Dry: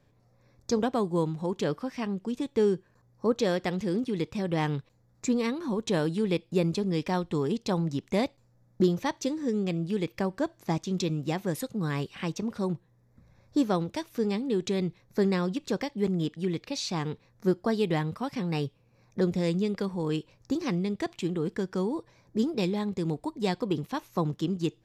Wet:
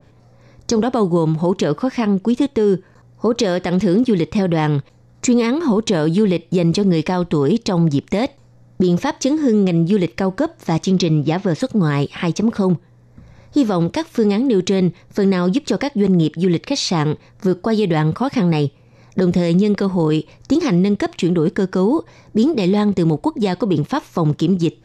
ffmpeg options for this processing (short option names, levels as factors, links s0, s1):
-filter_complex "[0:a]asettb=1/sr,asplit=3[s0][s1][s2];[s0]atrim=end=10.904[s3];[s1]atrim=start=10.9:end=11.61,asetpts=PTS-STARTPTS,afade=t=in:d=0.004:c=qsin,afade=t=out:st=0.706:d=0.004:c=qsin,lowpass=f=5900:w=0.5412,lowpass=f=5900:w=1.3066[s4];[s2]atrim=start=11.606[s5];[s3][s4]acrossfade=d=0.004:c1=hsin:c2=qsin[s6];[s6][s5]acrossfade=d=0.004:c1=qsin:c2=hsin,lowpass=8800,alimiter=level_in=11.9:limit=0.891:release=50:level=0:latency=1,adynamicequalizer=threshold=0.0447:dfrequency=1600:dqfactor=0.7:tfrequency=1600:tqfactor=0.7:attack=5:release=100:ratio=0.375:range=1.5:mode=cutabove:tftype=highshelf,volume=0.501"